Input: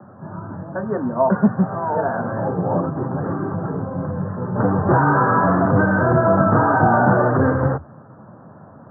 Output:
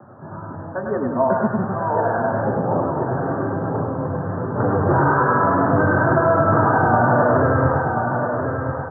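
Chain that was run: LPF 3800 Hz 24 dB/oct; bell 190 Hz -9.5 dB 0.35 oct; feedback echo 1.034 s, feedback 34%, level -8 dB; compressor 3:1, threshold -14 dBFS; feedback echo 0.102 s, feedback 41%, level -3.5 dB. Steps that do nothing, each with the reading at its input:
LPF 3800 Hz: input band ends at 1700 Hz

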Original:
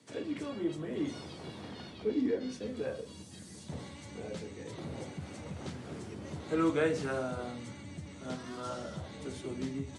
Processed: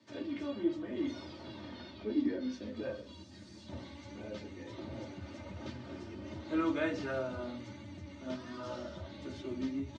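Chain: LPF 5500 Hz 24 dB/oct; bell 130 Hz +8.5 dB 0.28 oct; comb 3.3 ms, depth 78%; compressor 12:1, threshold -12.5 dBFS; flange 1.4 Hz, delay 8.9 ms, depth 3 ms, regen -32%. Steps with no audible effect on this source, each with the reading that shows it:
compressor, threshold -12.5 dBFS: input peak -16.5 dBFS

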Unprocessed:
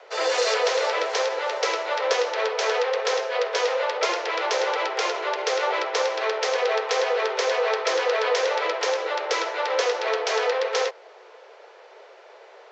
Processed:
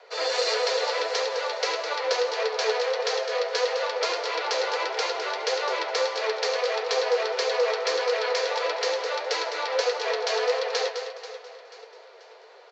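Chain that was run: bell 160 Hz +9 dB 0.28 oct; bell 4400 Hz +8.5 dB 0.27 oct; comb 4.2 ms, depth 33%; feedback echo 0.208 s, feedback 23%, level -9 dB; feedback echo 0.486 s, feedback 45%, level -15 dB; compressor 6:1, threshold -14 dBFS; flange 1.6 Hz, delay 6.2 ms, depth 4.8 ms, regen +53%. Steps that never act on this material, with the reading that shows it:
bell 160 Hz: input band starts at 320 Hz

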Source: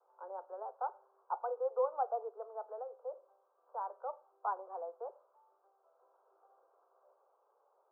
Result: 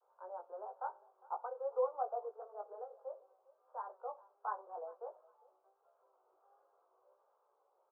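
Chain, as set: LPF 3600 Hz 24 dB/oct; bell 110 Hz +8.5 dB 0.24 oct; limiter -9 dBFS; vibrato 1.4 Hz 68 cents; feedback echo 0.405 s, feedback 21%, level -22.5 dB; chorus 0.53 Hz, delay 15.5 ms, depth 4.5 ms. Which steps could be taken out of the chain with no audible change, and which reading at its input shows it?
LPF 3600 Hz: input band ends at 1500 Hz; bell 110 Hz: input band starts at 360 Hz; limiter -9 dBFS: input peak -22.5 dBFS

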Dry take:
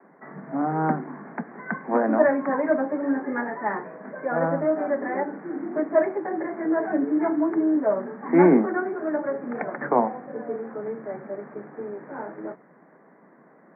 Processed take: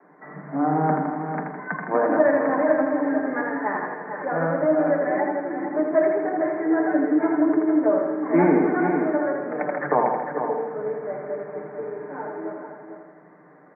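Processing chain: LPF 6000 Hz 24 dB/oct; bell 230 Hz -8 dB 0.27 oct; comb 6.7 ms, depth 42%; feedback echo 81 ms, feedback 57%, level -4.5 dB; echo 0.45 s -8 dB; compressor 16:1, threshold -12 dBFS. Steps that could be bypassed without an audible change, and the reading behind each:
LPF 6000 Hz: input band ends at 2000 Hz

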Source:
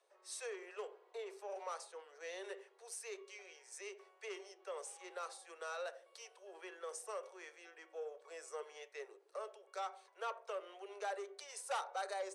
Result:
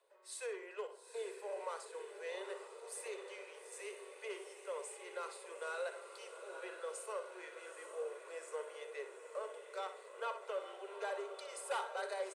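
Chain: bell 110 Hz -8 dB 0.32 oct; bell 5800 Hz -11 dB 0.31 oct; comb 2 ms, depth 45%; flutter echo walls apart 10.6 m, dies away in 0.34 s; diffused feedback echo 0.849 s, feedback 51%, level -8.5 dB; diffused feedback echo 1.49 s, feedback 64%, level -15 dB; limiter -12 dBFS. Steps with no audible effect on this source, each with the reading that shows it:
bell 110 Hz: input band starts at 320 Hz; limiter -12 dBFS: input peak -26.0 dBFS

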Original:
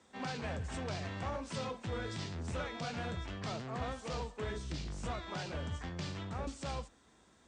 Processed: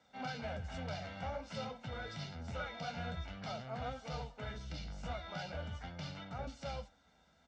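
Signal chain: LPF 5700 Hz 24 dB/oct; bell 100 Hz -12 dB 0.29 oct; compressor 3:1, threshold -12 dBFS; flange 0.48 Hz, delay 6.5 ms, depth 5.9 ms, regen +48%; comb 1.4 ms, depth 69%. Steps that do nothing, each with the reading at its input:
compressor, threshold -12 dBFS: input peak -26.5 dBFS

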